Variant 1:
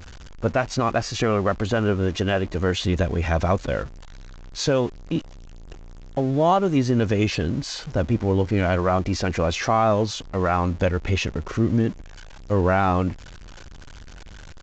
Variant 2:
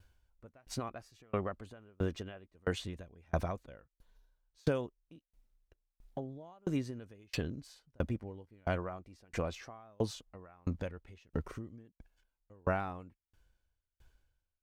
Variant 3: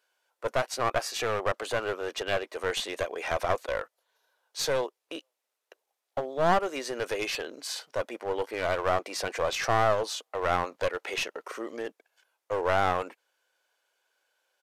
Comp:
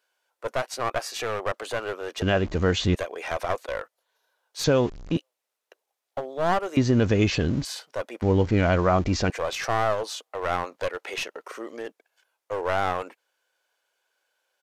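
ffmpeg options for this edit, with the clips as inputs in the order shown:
-filter_complex "[0:a]asplit=4[s0][s1][s2][s3];[2:a]asplit=5[s4][s5][s6][s7][s8];[s4]atrim=end=2.222[s9];[s0]atrim=start=2.218:end=2.952[s10];[s5]atrim=start=2.948:end=4.642[s11];[s1]atrim=start=4.638:end=5.172[s12];[s6]atrim=start=5.168:end=6.772[s13];[s2]atrim=start=6.768:end=7.652[s14];[s7]atrim=start=7.648:end=8.222[s15];[s3]atrim=start=8.218:end=9.302[s16];[s8]atrim=start=9.298[s17];[s9][s10]acrossfade=d=0.004:c1=hsin:c2=hsin[s18];[s18][s11]acrossfade=d=0.004:c1=hsin:c2=hsin[s19];[s19][s12]acrossfade=d=0.004:c1=hsin:c2=hsin[s20];[s20][s13]acrossfade=d=0.004:c1=hsin:c2=hsin[s21];[s21][s14]acrossfade=d=0.004:c1=hsin:c2=hsin[s22];[s22][s15]acrossfade=d=0.004:c1=hsin:c2=hsin[s23];[s23][s16]acrossfade=d=0.004:c1=hsin:c2=hsin[s24];[s24][s17]acrossfade=d=0.004:c1=hsin:c2=hsin"

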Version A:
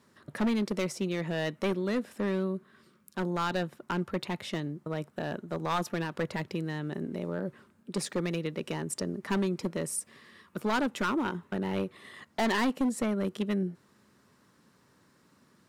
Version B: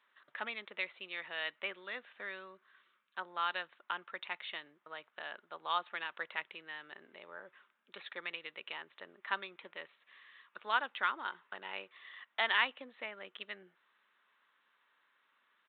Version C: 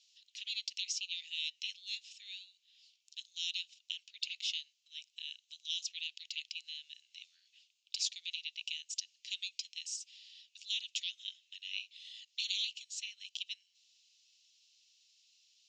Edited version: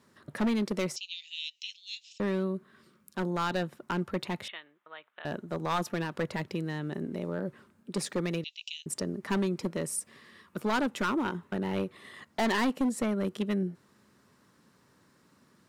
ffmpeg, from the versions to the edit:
-filter_complex "[2:a]asplit=2[s0][s1];[0:a]asplit=4[s2][s3][s4][s5];[s2]atrim=end=0.962[s6];[s0]atrim=start=0.958:end=2.202[s7];[s3]atrim=start=2.198:end=4.482[s8];[1:a]atrim=start=4.478:end=5.252[s9];[s4]atrim=start=5.248:end=8.442[s10];[s1]atrim=start=8.438:end=8.862[s11];[s5]atrim=start=8.858[s12];[s6][s7]acrossfade=d=0.004:c1=hsin:c2=hsin[s13];[s13][s8]acrossfade=d=0.004:c1=hsin:c2=hsin[s14];[s14][s9]acrossfade=d=0.004:c1=hsin:c2=hsin[s15];[s15][s10]acrossfade=d=0.004:c1=hsin:c2=hsin[s16];[s16][s11]acrossfade=d=0.004:c1=hsin:c2=hsin[s17];[s17][s12]acrossfade=d=0.004:c1=hsin:c2=hsin"

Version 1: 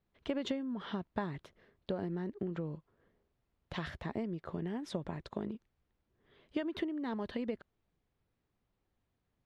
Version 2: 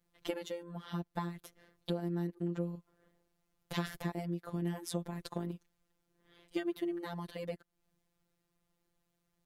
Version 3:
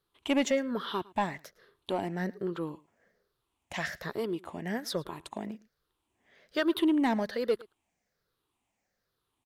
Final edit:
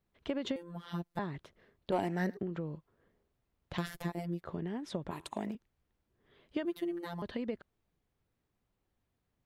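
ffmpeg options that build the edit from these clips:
-filter_complex "[1:a]asplit=3[s0][s1][s2];[2:a]asplit=2[s3][s4];[0:a]asplit=6[s5][s6][s7][s8][s9][s10];[s5]atrim=end=0.562[s11];[s0]atrim=start=0.558:end=1.192[s12];[s6]atrim=start=1.188:end=1.922[s13];[s3]atrim=start=1.918:end=2.372[s14];[s7]atrim=start=2.368:end=3.782[s15];[s1]atrim=start=3.778:end=4.412[s16];[s8]atrim=start=4.408:end=5.112[s17];[s4]atrim=start=5.108:end=5.552[s18];[s9]atrim=start=5.548:end=6.652[s19];[s2]atrim=start=6.648:end=7.222[s20];[s10]atrim=start=7.218[s21];[s11][s12]acrossfade=d=0.004:c1=hsin:c2=hsin[s22];[s22][s13]acrossfade=d=0.004:c1=hsin:c2=hsin[s23];[s23][s14]acrossfade=d=0.004:c1=hsin:c2=hsin[s24];[s24][s15]acrossfade=d=0.004:c1=hsin:c2=hsin[s25];[s25][s16]acrossfade=d=0.004:c1=hsin:c2=hsin[s26];[s26][s17]acrossfade=d=0.004:c1=hsin:c2=hsin[s27];[s27][s18]acrossfade=d=0.004:c1=hsin:c2=hsin[s28];[s28][s19]acrossfade=d=0.004:c1=hsin:c2=hsin[s29];[s29][s20]acrossfade=d=0.004:c1=hsin:c2=hsin[s30];[s30][s21]acrossfade=d=0.004:c1=hsin:c2=hsin"

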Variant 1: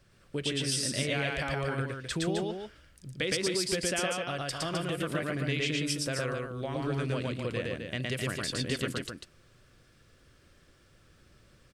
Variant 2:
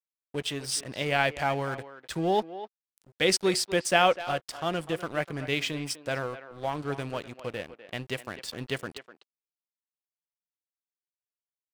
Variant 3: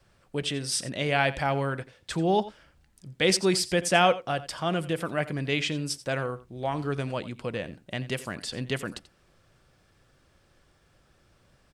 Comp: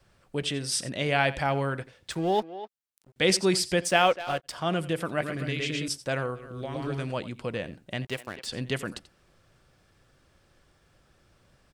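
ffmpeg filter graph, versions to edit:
-filter_complex "[1:a]asplit=3[s0][s1][s2];[0:a]asplit=2[s3][s4];[2:a]asplit=6[s5][s6][s7][s8][s9][s10];[s5]atrim=end=2.112[s11];[s0]atrim=start=2.108:end=3.162[s12];[s6]atrim=start=3.158:end=3.98[s13];[s1]atrim=start=3.74:end=4.67[s14];[s7]atrim=start=4.43:end=5.212[s15];[s3]atrim=start=5.208:end=5.882[s16];[s8]atrim=start=5.878:end=6.57[s17];[s4]atrim=start=6.33:end=7.14[s18];[s9]atrim=start=6.9:end=8.052[s19];[s2]atrim=start=8.048:end=8.462[s20];[s10]atrim=start=8.458[s21];[s11][s12]acrossfade=d=0.004:c1=hsin:c2=hsin[s22];[s22][s13]acrossfade=d=0.004:c1=hsin:c2=hsin[s23];[s23][s14]acrossfade=d=0.24:c1=tri:c2=tri[s24];[s24][s15]acrossfade=d=0.24:c1=tri:c2=tri[s25];[s25][s16]acrossfade=d=0.004:c1=hsin:c2=hsin[s26];[s26][s17]acrossfade=d=0.004:c1=hsin:c2=hsin[s27];[s27][s18]acrossfade=d=0.24:c1=tri:c2=tri[s28];[s28][s19]acrossfade=d=0.24:c1=tri:c2=tri[s29];[s29][s20]acrossfade=d=0.004:c1=hsin:c2=hsin[s30];[s30][s21]acrossfade=d=0.004:c1=hsin:c2=hsin"

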